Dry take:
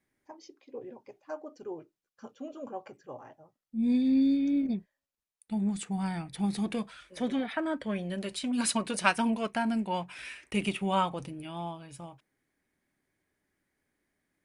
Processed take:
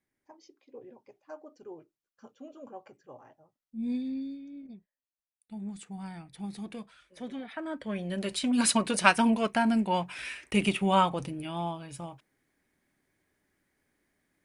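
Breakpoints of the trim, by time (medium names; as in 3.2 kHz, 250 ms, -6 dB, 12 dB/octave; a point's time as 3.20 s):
3.93 s -5.5 dB
4.48 s -18 dB
5.70 s -8.5 dB
7.41 s -8.5 dB
8.32 s +4 dB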